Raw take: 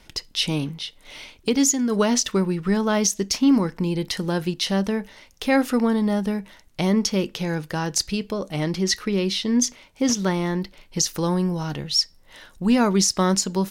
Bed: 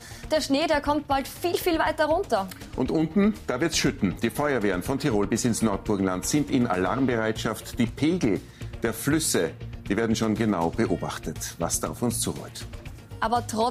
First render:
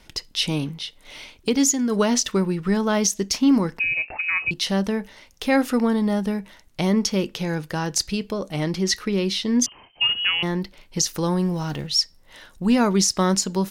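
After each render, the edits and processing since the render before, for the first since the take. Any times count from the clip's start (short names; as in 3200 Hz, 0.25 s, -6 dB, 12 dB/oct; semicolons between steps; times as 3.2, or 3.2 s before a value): 3.79–4.51 inverted band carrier 2700 Hz; 9.66–10.43 inverted band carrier 3100 Hz; 11.38–11.87 zero-crossing step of -42 dBFS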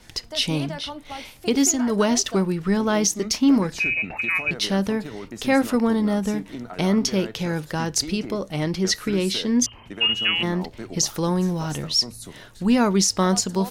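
add bed -12 dB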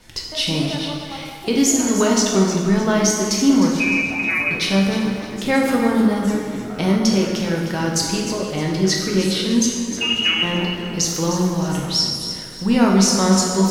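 plate-style reverb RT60 1.5 s, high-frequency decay 0.8×, DRR -1 dB; lo-fi delay 0.307 s, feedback 35%, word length 8-bit, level -10.5 dB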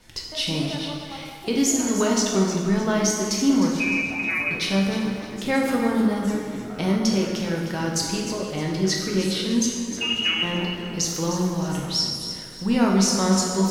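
gain -4.5 dB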